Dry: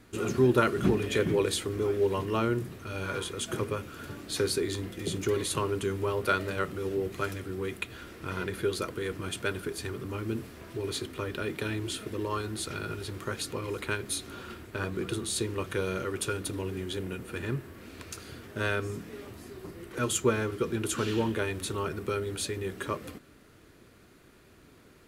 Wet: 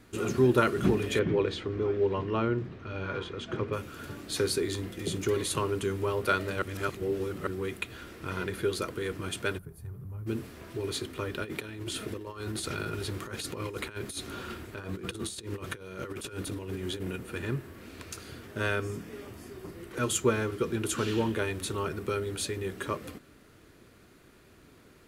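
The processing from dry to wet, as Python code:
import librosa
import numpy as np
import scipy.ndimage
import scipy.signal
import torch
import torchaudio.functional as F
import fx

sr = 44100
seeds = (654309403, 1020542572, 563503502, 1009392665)

y = fx.air_absorb(x, sr, metres=210.0, at=(1.19, 3.73))
y = fx.curve_eq(y, sr, hz=(160.0, 280.0, 800.0, 3300.0, 7600.0, 12000.0), db=(0, -20, -13, -29, -22, -8), at=(9.57, 10.26), fade=0.02)
y = fx.over_compress(y, sr, threshold_db=-36.0, ratio=-0.5, at=(11.44, 17.16))
y = fx.notch(y, sr, hz=4000.0, q=12.0, at=(18.59, 19.68))
y = fx.edit(y, sr, fx.reverse_span(start_s=6.62, length_s=0.85), tone=tone)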